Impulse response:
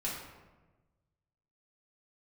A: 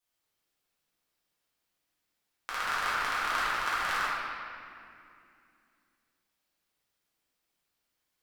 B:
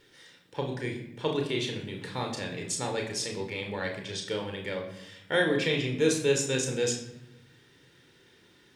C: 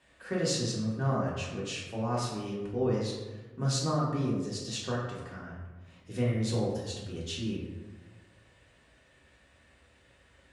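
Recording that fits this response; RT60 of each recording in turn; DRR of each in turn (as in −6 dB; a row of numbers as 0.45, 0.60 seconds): C; 2.5, 0.85, 1.2 seconds; −10.5, 2.0, −6.5 decibels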